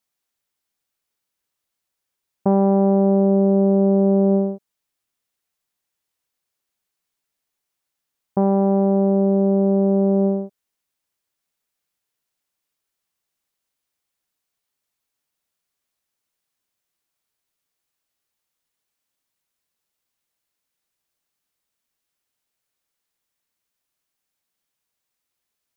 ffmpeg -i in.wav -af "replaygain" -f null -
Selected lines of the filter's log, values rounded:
track_gain = +1.5 dB
track_peak = 0.306